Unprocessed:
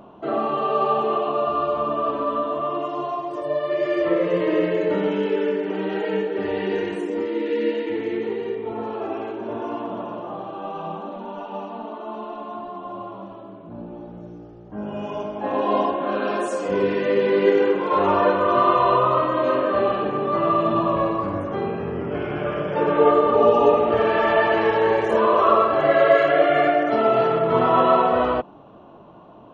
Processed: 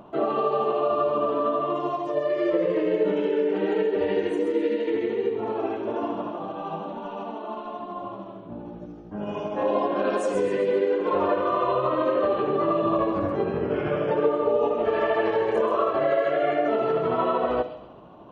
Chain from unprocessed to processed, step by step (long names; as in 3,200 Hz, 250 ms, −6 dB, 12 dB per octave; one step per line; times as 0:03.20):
dynamic equaliser 460 Hz, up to +6 dB, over −31 dBFS, Q 1.7
downward compressor 6 to 1, threshold −19 dBFS, peak gain reduction 12.5 dB
time stretch by overlap-add 0.62×, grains 155 ms
delay with a high-pass on its return 131 ms, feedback 41%, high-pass 3,300 Hz, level −5.5 dB
on a send at −15 dB: convolution reverb RT60 0.95 s, pre-delay 21 ms